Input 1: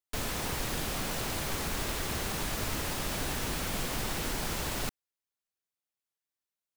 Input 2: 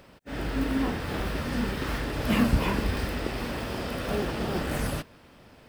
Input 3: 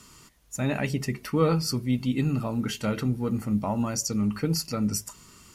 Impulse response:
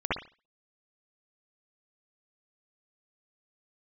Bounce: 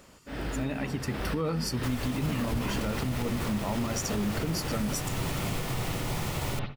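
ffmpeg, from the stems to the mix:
-filter_complex "[0:a]equalizer=f=130:w=2.8:g=13,bandreject=f=1.6k:w=7.7,adelay=1700,volume=-16dB,asplit=2[a][b];[b]volume=-4dB[c];[1:a]volume=-3dB[d];[2:a]volume=-8.5dB,asplit=2[e][f];[f]apad=whole_len=250818[g];[d][g]sidechaincompress=threshold=-41dB:ratio=4:attack=16:release=565[h];[3:a]atrim=start_sample=2205[i];[c][i]afir=irnorm=-1:irlink=0[j];[a][h][e][j]amix=inputs=4:normalize=0,dynaudnorm=f=280:g=9:m=12dB,alimiter=limit=-21dB:level=0:latency=1:release=209"

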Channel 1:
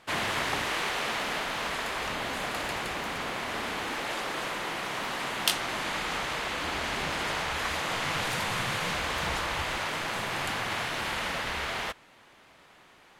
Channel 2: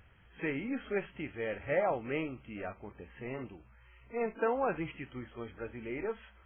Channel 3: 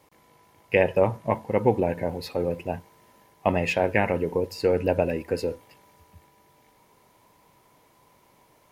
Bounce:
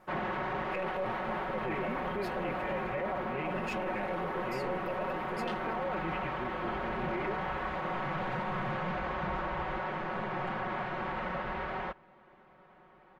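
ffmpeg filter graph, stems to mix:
-filter_complex "[0:a]lowpass=1.2k,volume=-1.5dB[a];[1:a]acompressor=threshold=-35dB:ratio=6,adelay=1250,volume=1dB[b];[2:a]aeval=exprs='if(lt(val(0),0),0.708*val(0),val(0))':c=same,volume=-12.5dB[c];[a][b][c]amix=inputs=3:normalize=0,aecho=1:1:5.4:0.81,alimiter=level_in=2dB:limit=-24dB:level=0:latency=1:release=11,volume=-2dB"

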